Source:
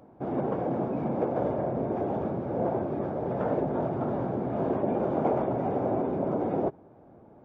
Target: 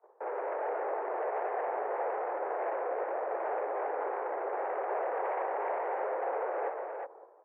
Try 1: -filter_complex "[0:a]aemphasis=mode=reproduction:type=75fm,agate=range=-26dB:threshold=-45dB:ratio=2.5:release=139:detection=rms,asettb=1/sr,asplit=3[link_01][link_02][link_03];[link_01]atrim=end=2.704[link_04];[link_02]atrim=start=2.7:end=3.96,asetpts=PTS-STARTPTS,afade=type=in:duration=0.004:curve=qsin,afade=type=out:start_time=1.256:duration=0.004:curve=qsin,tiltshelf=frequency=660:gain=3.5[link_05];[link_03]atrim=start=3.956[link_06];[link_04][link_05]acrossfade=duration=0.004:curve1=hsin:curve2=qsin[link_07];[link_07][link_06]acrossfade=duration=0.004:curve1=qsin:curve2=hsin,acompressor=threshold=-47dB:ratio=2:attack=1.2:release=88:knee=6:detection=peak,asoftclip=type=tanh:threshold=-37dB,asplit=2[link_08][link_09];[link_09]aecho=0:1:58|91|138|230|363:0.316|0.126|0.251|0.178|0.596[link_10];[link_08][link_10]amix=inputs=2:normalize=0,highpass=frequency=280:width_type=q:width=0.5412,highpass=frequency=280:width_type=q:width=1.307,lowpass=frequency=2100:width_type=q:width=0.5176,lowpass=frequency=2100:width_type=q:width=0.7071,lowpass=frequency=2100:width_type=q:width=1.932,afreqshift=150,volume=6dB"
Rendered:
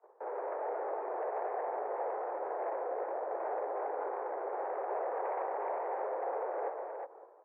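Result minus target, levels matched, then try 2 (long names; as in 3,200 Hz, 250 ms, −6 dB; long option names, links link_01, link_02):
downward compressor: peak gain reduction +6 dB
-filter_complex "[0:a]aemphasis=mode=reproduction:type=75fm,agate=range=-26dB:threshold=-45dB:ratio=2.5:release=139:detection=rms,asettb=1/sr,asplit=3[link_01][link_02][link_03];[link_01]atrim=end=2.704[link_04];[link_02]atrim=start=2.7:end=3.96,asetpts=PTS-STARTPTS,afade=type=in:duration=0.004:curve=qsin,afade=type=out:start_time=1.256:duration=0.004:curve=qsin,tiltshelf=frequency=660:gain=3.5[link_05];[link_03]atrim=start=3.956[link_06];[link_04][link_05]acrossfade=duration=0.004:curve1=hsin:curve2=qsin[link_07];[link_07][link_06]acrossfade=duration=0.004:curve1=qsin:curve2=hsin,acompressor=threshold=-35.5dB:ratio=2:attack=1.2:release=88:knee=6:detection=peak,asoftclip=type=tanh:threshold=-37dB,asplit=2[link_08][link_09];[link_09]aecho=0:1:58|91|138|230|363:0.316|0.126|0.251|0.178|0.596[link_10];[link_08][link_10]amix=inputs=2:normalize=0,highpass=frequency=280:width_type=q:width=0.5412,highpass=frequency=280:width_type=q:width=1.307,lowpass=frequency=2100:width_type=q:width=0.5176,lowpass=frequency=2100:width_type=q:width=0.7071,lowpass=frequency=2100:width_type=q:width=1.932,afreqshift=150,volume=6dB"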